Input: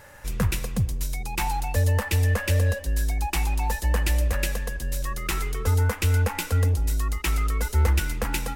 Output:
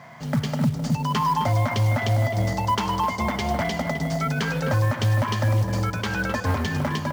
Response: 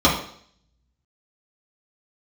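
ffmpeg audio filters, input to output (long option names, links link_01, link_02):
-filter_complex "[0:a]dynaudnorm=framelen=290:gausssize=5:maxgain=5dB,aeval=exprs='0.299*(abs(mod(val(0)/0.299+3,4)-2)-1)':channel_layout=same,asplit=2[link_01][link_02];[link_02]adelay=310,lowpass=frequency=1700:poles=1,volume=-11dB,asplit=2[link_03][link_04];[link_04]adelay=310,lowpass=frequency=1700:poles=1,volume=0.52,asplit=2[link_05][link_06];[link_06]adelay=310,lowpass=frequency=1700:poles=1,volume=0.52,asplit=2[link_07][link_08];[link_08]adelay=310,lowpass=frequency=1700:poles=1,volume=0.52,asplit=2[link_09][link_10];[link_10]adelay=310,lowpass=frequency=1700:poles=1,volume=0.52,asplit=2[link_11][link_12];[link_12]adelay=310,lowpass=frequency=1700:poles=1,volume=0.52[link_13];[link_03][link_05][link_07][link_09][link_11][link_13]amix=inputs=6:normalize=0[link_14];[link_01][link_14]amix=inputs=2:normalize=0,asetrate=52920,aresample=44100,highpass=frequency=120:width=0.5412,highpass=frequency=120:width=1.3066,equalizer=frequency=150:width_type=q:width=4:gain=9,equalizer=frequency=230:width_type=q:width=4:gain=7,equalizer=frequency=350:width_type=q:width=4:gain=-5,equalizer=frequency=840:width_type=q:width=4:gain=8,equalizer=frequency=2600:width_type=q:width=4:gain=-9,equalizer=frequency=3700:width_type=q:width=4:gain=-5,lowpass=frequency=5500:width=0.5412,lowpass=frequency=5500:width=1.3066,alimiter=limit=-17.5dB:level=0:latency=1:release=125,acrusher=bits=6:mode=log:mix=0:aa=0.000001,volume=3.5dB"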